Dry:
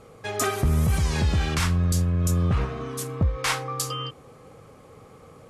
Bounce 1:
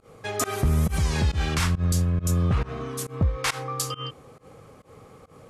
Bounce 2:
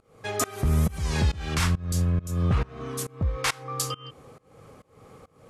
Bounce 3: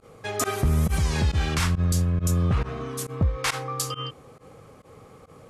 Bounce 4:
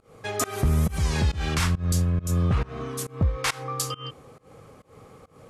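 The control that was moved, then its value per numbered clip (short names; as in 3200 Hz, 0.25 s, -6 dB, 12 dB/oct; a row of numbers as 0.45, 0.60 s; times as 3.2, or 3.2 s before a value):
pump, release: 117, 381, 69, 203 ms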